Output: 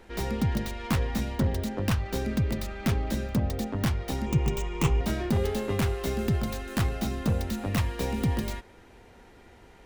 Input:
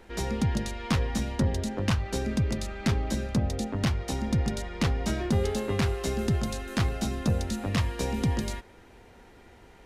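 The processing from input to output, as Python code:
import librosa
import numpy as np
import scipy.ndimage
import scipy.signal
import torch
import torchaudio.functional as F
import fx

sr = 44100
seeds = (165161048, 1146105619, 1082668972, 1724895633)

y = fx.tracing_dist(x, sr, depth_ms=0.2)
y = 10.0 ** (-17.5 / 20.0) * (np.abs((y / 10.0 ** (-17.5 / 20.0) + 3.0) % 4.0 - 2.0) - 1.0)
y = fx.ripple_eq(y, sr, per_octave=0.71, db=12, at=(4.26, 5.01))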